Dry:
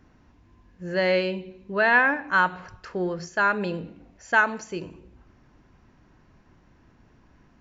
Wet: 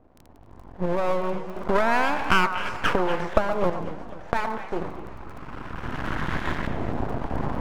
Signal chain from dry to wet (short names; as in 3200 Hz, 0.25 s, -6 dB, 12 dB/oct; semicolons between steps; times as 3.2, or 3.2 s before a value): block floating point 3-bit; recorder AGC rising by 18 dB/s; 1.56–3.7 bell 700 Hz +15 dB 2.7 oct; compressor 16:1, threshold -20 dBFS, peak gain reduction 17.5 dB; LFO low-pass saw up 0.3 Hz 650–1900 Hz; crackle 17/s -37 dBFS; half-wave rectifier; delay with a stepping band-pass 0.119 s, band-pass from 940 Hz, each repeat 1.4 oct, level -6.5 dB; warbling echo 0.252 s, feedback 58%, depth 196 cents, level -16 dB; gain +2 dB